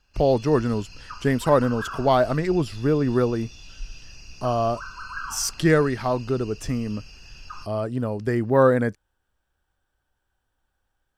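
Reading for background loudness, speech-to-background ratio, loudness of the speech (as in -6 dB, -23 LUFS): -41.0 LUFS, 18.0 dB, -23.0 LUFS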